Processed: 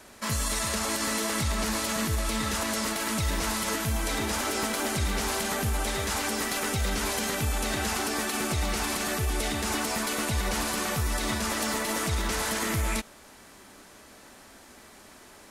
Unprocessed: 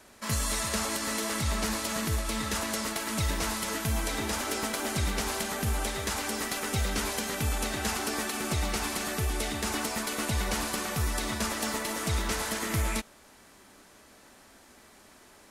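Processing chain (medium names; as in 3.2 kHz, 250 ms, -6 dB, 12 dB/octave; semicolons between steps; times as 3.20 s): peak limiter -23.5 dBFS, peak gain reduction 6 dB; trim +4.5 dB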